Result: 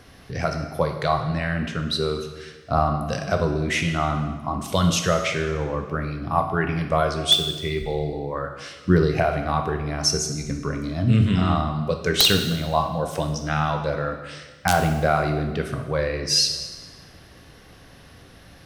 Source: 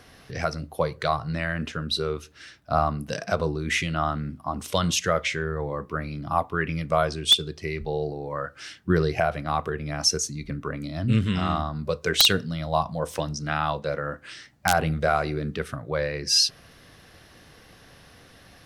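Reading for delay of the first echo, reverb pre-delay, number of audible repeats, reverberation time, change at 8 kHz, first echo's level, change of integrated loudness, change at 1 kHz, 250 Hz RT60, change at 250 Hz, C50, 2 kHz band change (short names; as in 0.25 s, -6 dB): none, 4 ms, none, 1.3 s, +1.5 dB, none, +2.5 dB, +2.5 dB, 1.3 s, +5.0 dB, 7.0 dB, +1.5 dB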